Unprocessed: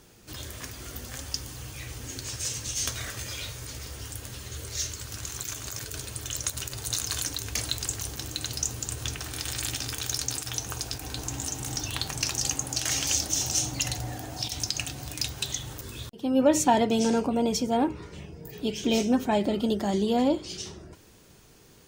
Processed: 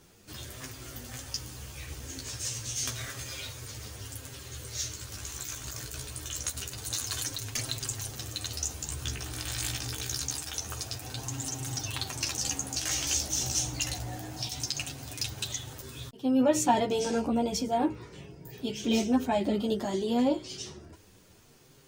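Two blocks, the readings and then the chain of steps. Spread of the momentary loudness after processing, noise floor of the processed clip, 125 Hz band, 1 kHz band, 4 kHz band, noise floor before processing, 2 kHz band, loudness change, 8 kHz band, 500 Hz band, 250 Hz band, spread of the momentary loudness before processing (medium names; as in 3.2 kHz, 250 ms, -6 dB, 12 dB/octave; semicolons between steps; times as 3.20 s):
14 LU, -56 dBFS, -2.0 dB, -2.5 dB, -3.0 dB, -54 dBFS, -3.0 dB, -3.0 dB, -3.0 dB, -3.0 dB, -2.5 dB, 14 LU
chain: chorus voices 2, 0.26 Hz, delay 12 ms, depth 4.6 ms; crackle 35 per s -53 dBFS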